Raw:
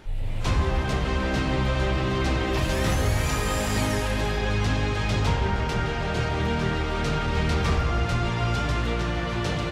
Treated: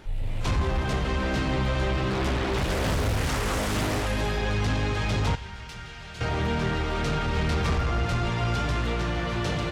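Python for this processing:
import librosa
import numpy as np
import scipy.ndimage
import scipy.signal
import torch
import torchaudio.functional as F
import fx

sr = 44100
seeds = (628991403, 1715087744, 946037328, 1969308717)

y = fx.tone_stack(x, sr, knobs='5-5-5', at=(5.35, 6.21))
y = 10.0 ** (-17.5 / 20.0) * np.tanh(y / 10.0 ** (-17.5 / 20.0))
y = fx.doppler_dist(y, sr, depth_ms=0.95, at=(2.1, 4.06))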